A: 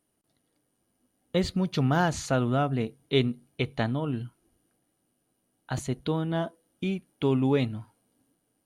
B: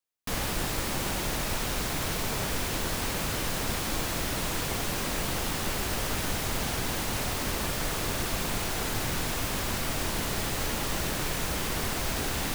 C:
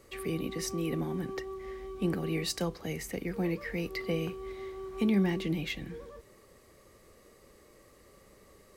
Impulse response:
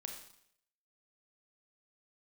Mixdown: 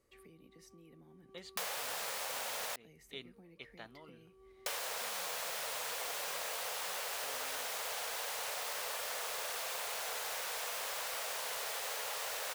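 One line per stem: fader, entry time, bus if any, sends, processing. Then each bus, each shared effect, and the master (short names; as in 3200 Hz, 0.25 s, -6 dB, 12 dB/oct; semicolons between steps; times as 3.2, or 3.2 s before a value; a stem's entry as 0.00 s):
-16.0 dB, 0.00 s, no send, HPF 1200 Hz 6 dB/oct
+2.5 dB, 1.30 s, muted 2.76–4.66, no send, steep high-pass 450 Hz 72 dB/oct; companded quantiser 4-bit
-17.5 dB, 0.00 s, no send, compressor 12:1, threshold -38 dBFS, peak gain reduction 16 dB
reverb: off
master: compressor 10:1, threshold -36 dBFS, peak gain reduction 10.5 dB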